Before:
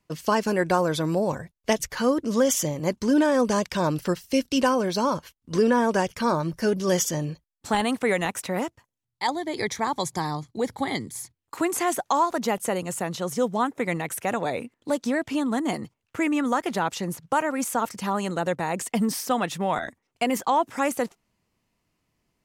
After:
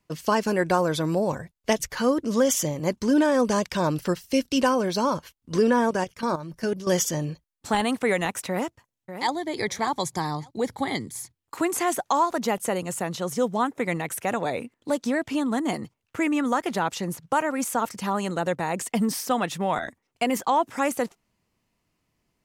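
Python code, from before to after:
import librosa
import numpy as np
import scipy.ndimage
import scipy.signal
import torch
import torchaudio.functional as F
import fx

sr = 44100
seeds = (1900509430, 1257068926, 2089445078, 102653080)

y = fx.level_steps(x, sr, step_db=12, at=(5.89, 6.87))
y = fx.echo_throw(y, sr, start_s=8.49, length_s=0.83, ms=590, feedback_pct=15, wet_db=-10.0)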